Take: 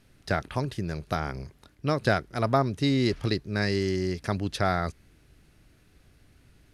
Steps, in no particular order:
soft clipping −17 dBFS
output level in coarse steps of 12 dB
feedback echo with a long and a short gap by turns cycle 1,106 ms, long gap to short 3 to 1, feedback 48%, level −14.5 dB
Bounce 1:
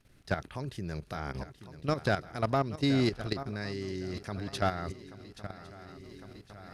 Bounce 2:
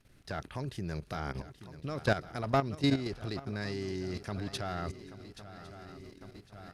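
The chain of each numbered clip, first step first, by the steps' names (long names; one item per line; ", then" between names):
feedback echo with a long and a short gap by turns, then output level in coarse steps, then soft clipping
soft clipping, then feedback echo with a long and a short gap by turns, then output level in coarse steps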